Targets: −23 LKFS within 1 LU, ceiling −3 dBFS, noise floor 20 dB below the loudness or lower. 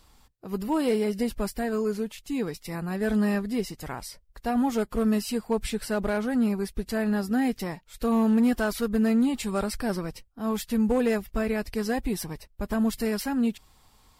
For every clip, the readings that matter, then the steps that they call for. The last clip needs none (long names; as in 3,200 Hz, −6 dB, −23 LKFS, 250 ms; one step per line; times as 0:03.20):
share of clipped samples 0.4%; peaks flattened at −17.0 dBFS; integrated loudness −27.5 LKFS; sample peak −17.0 dBFS; target loudness −23.0 LKFS
→ clipped peaks rebuilt −17 dBFS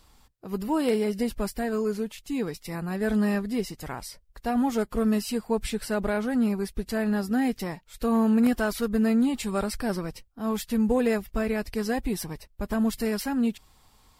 share of clipped samples 0.0%; integrated loudness −27.5 LKFS; sample peak −9.5 dBFS; target loudness −23.0 LKFS
→ level +4.5 dB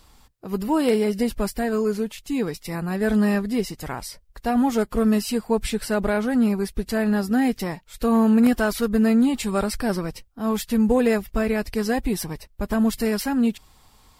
integrated loudness −23.0 LKFS; sample peak −5.0 dBFS; background noise floor −56 dBFS